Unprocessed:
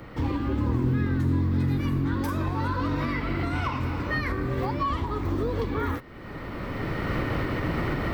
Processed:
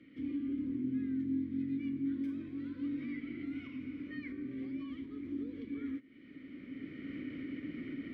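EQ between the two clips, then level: dynamic EQ 3900 Hz, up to -5 dB, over -48 dBFS, Q 0.73; vowel filter i; -3.0 dB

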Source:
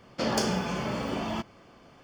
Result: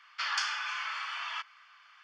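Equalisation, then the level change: steep high-pass 1200 Hz 36 dB/oct; tape spacing loss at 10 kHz 32 dB; high shelf 2600 Hz +8.5 dB; +7.5 dB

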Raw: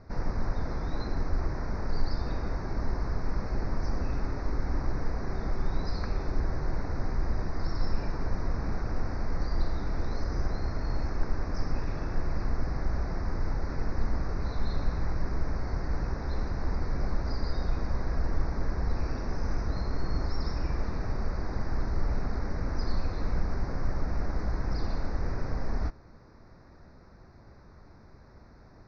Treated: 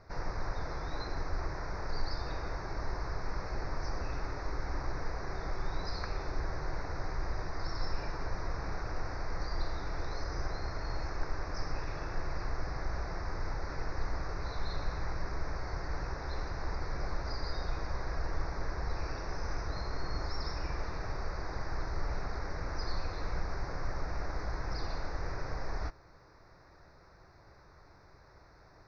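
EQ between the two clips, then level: bell 230 Hz -14.5 dB 0.29 oct; low shelf 490 Hz -8.5 dB; +1.5 dB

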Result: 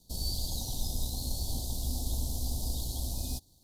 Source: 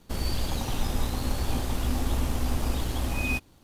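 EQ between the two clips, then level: elliptic band-stop 800–4000 Hz, stop band 50 dB; passive tone stack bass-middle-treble 5-5-5; notch 820 Hz, Q 12; +8.5 dB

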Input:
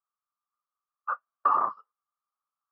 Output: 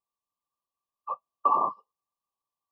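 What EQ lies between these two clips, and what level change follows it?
brick-wall FIR band-stop 1200–2400 Hz; tilt shelf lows +3.5 dB, about 1100 Hz; +2.0 dB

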